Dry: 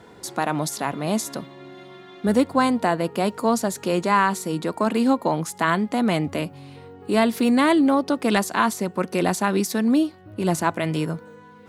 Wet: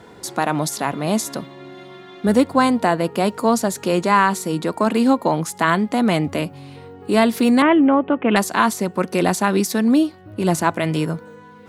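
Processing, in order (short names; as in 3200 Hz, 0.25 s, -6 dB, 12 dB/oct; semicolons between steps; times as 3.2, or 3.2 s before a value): 7.62–8.36 steep low-pass 3100 Hz 72 dB/oct; gain +3.5 dB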